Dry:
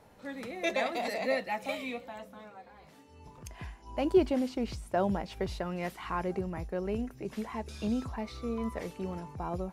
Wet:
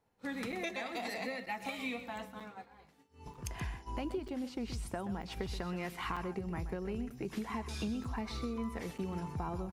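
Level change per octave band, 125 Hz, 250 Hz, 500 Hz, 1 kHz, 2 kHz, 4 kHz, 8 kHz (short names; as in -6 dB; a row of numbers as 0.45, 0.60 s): -1.5, -5.0, -9.5, -5.0, -3.0, -2.0, 0.0 dB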